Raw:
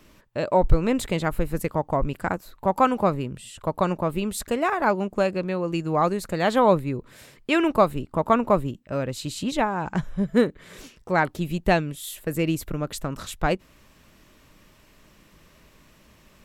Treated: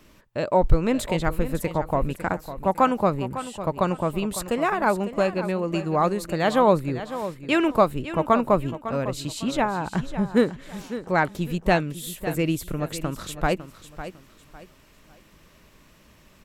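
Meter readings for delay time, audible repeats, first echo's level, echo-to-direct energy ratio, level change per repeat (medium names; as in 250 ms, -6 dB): 553 ms, 3, -12.5 dB, -12.0 dB, -10.5 dB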